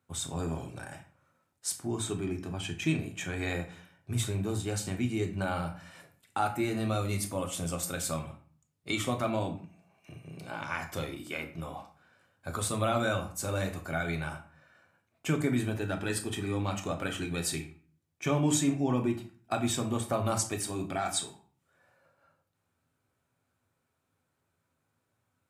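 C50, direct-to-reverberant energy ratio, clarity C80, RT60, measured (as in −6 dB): 10.5 dB, 3.5 dB, 15.0 dB, 0.40 s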